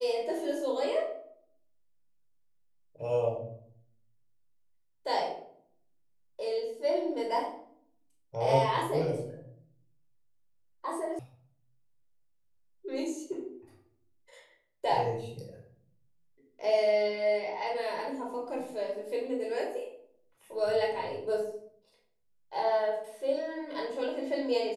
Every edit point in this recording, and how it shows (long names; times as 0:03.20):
0:11.19: cut off before it has died away